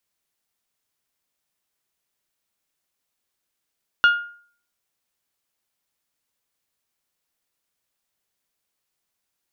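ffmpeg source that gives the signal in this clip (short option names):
-f lavfi -i "aevalsrc='0.355*pow(10,-3*t/0.5)*sin(2*PI*1420*t)+0.119*pow(10,-3*t/0.308)*sin(2*PI*2840*t)+0.0398*pow(10,-3*t/0.271)*sin(2*PI*3408*t)+0.0133*pow(10,-3*t/0.232)*sin(2*PI*4260*t)+0.00447*pow(10,-3*t/0.189)*sin(2*PI*5680*t)':d=0.89:s=44100"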